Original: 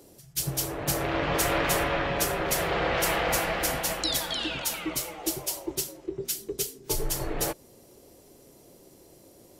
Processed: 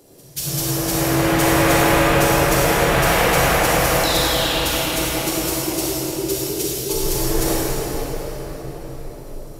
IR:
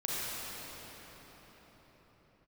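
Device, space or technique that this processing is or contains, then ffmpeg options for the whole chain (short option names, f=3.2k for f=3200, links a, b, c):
cathedral: -filter_complex "[1:a]atrim=start_sample=2205[a];[0:a][a]afir=irnorm=-1:irlink=0,volume=3.5dB"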